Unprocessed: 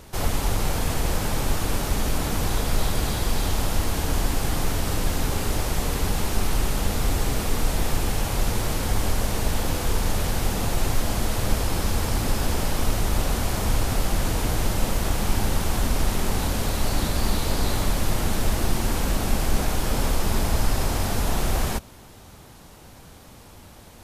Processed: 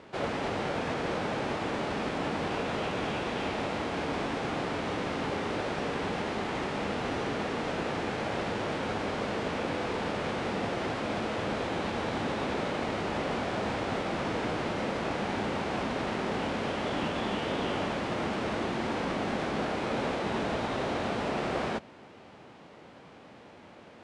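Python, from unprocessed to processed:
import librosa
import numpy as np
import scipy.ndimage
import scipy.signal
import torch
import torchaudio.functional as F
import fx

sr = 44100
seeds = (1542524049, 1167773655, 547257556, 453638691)

y = fx.formant_shift(x, sr, semitones=-5)
y = fx.bandpass_edges(y, sr, low_hz=210.0, high_hz=2500.0)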